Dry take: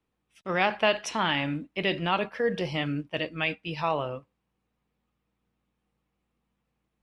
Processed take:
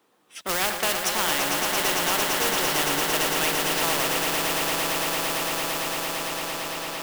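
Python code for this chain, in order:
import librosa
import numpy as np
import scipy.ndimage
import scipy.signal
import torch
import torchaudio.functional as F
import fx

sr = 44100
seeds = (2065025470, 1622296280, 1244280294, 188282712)

p1 = fx.recorder_agc(x, sr, target_db=-14.0, rise_db_per_s=6.4, max_gain_db=30)
p2 = scipy.signal.sosfilt(scipy.signal.butter(2, 370.0, 'highpass', fs=sr, output='sos'), p1)
p3 = fx.peak_eq(p2, sr, hz=2400.0, db=-6.0, octaves=0.56)
p4 = (np.mod(10.0 ** (23.5 / 20.0) * p3 + 1.0, 2.0) - 1.0) / 10.0 ** (23.5 / 20.0)
p5 = p3 + (p4 * librosa.db_to_amplitude(-7.5))
p6 = fx.mod_noise(p5, sr, seeds[0], snr_db=19)
p7 = p6 + fx.echo_swell(p6, sr, ms=113, loudest=8, wet_db=-9, dry=0)
y = fx.spectral_comp(p7, sr, ratio=2.0)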